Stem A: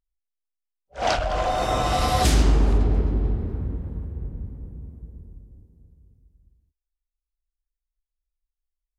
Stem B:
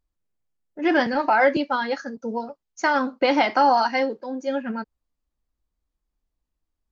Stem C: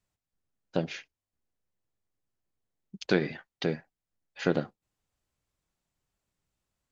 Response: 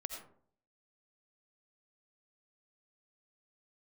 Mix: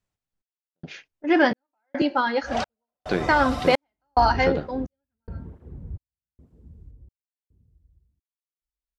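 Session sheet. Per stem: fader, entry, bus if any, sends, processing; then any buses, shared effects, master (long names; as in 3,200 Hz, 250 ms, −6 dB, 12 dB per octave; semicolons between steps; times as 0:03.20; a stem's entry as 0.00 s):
−4.5 dB, 1.50 s, send −5.5 dB, parametric band 69 Hz +4 dB 0.77 octaves; through-zero flanger with one copy inverted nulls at 1.1 Hz, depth 5.5 ms; automatic ducking −7 dB, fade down 0.30 s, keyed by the third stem
+0.5 dB, 0.45 s, send −14 dB, noise gate −36 dBFS, range −16 dB
0.0 dB, 0.00 s, no send, no processing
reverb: on, RT60 0.55 s, pre-delay 45 ms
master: high-shelf EQ 5,800 Hz −5.5 dB; gate pattern "xxx...xx" 108 BPM −60 dB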